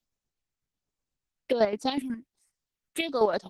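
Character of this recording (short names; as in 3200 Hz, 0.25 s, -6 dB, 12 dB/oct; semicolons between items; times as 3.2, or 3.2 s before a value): phasing stages 4, 1.3 Hz, lowest notch 670–3500 Hz; chopped level 8.1 Hz, depth 60%, duty 35%; Opus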